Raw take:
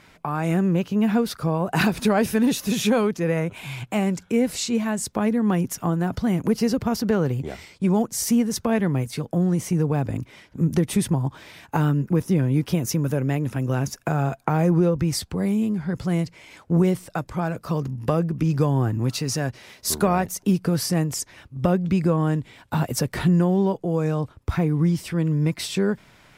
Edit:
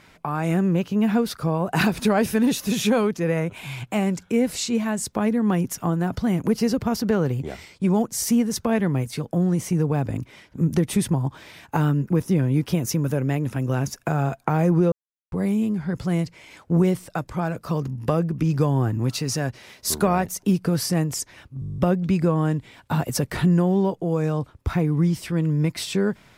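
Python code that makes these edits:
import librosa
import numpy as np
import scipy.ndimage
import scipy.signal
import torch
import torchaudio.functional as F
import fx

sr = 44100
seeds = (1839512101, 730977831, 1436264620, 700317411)

y = fx.edit(x, sr, fx.silence(start_s=14.92, length_s=0.4),
    fx.stutter(start_s=21.6, slice_s=0.02, count=10), tone=tone)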